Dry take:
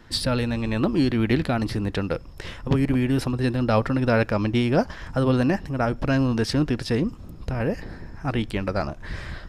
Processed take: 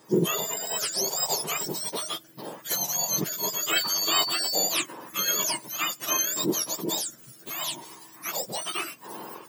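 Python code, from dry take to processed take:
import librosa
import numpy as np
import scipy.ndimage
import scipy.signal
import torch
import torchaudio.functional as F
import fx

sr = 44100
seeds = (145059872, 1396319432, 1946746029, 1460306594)

y = fx.octave_mirror(x, sr, pivot_hz=1300.0)
y = fx.dmg_tone(y, sr, hz=4500.0, level_db=-28.0, at=(3.76, 4.63), fade=0.02)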